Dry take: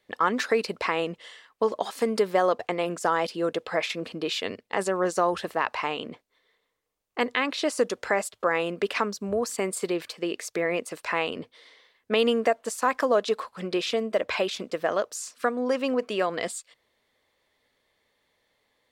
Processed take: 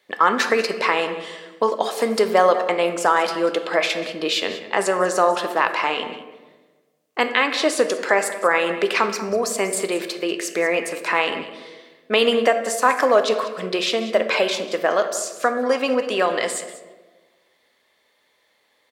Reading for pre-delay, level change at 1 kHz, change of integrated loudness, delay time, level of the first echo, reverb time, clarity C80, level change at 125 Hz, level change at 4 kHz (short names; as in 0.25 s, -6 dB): 3 ms, +7.5 dB, +6.5 dB, 0.19 s, -15.5 dB, 1.3 s, 10.5 dB, +0.5 dB, +8.0 dB